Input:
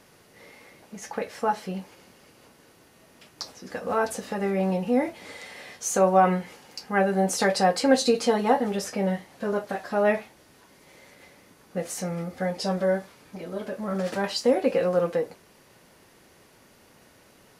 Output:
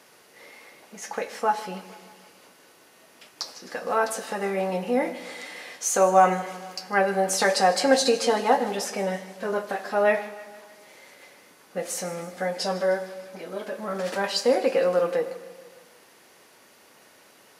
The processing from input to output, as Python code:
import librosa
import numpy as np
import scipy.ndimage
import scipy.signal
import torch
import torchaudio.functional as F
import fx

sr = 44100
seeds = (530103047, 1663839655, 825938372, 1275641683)

y = fx.highpass(x, sr, hz=180.0, slope=6)
y = fx.low_shelf(y, sr, hz=240.0, db=-11.0)
y = fx.echo_feedback(y, sr, ms=154, feedback_pct=59, wet_db=-18.0)
y = fx.rev_schroeder(y, sr, rt60_s=1.3, comb_ms=33, drr_db=13.5)
y = F.gain(torch.from_numpy(y), 3.0).numpy()